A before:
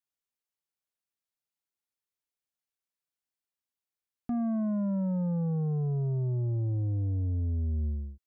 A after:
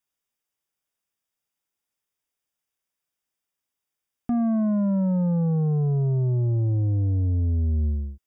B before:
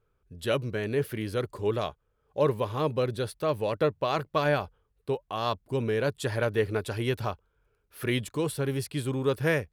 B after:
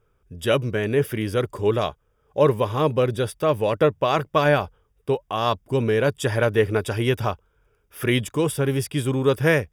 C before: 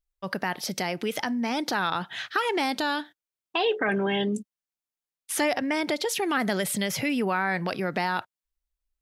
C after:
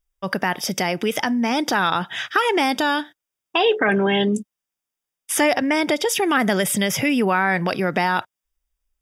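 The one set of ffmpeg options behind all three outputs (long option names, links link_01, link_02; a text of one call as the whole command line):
ffmpeg -i in.wav -af "asuperstop=centerf=4200:order=20:qfactor=6.5,volume=7dB" out.wav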